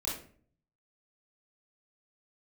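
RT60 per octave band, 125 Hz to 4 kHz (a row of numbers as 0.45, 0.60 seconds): 0.90, 0.70, 0.55, 0.40, 0.40, 0.30 seconds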